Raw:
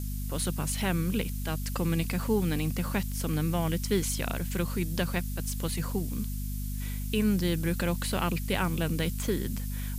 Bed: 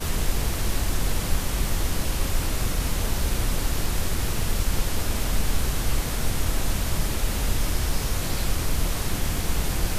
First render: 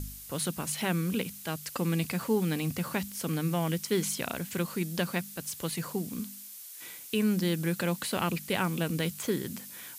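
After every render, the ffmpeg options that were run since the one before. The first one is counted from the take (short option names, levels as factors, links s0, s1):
-af "bandreject=f=50:t=h:w=4,bandreject=f=100:t=h:w=4,bandreject=f=150:t=h:w=4,bandreject=f=200:t=h:w=4,bandreject=f=250:t=h:w=4"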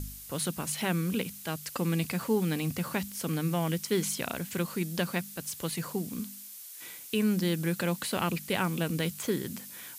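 -af anull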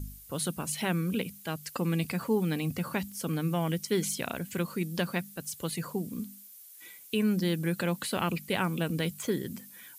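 -af "afftdn=nr=10:nf=-46"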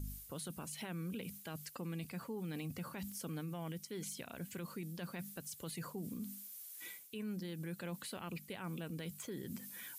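-af "areverse,acompressor=threshold=0.0141:ratio=6,areverse,alimiter=level_in=3.76:limit=0.0631:level=0:latency=1:release=73,volume=0.266"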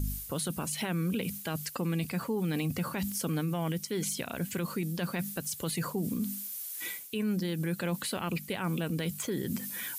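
-af "volume=3.76"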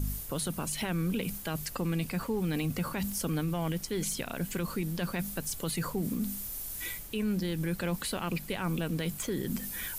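-filter_complex "[1:a]volume=0.0562[s0];[0:a][s0]amix=inputs=2:normalize=0"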